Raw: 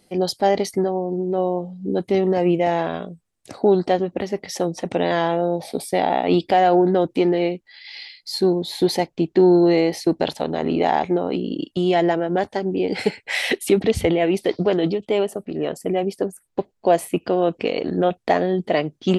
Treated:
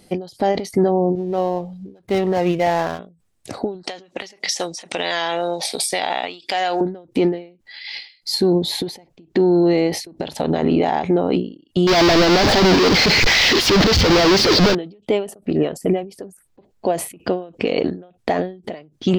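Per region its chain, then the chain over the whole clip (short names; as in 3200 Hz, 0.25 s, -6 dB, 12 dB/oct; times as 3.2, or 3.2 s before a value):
1.15–2.99 median filter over 15 samples + bell 260 Hz -10.5 dB 2.6 oct
3.83–6.81 weighting filter ITU-R 468 + compressor, threshold -24 dBFS
11.87–14.75 infinite clipping + resonant high shelf 6900 Hz -13 dB, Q 3
whole clip: low shelf 200 Hz +5 dB; maximiser +14 dB; ending taper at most 140 dB/s; gain -7 dB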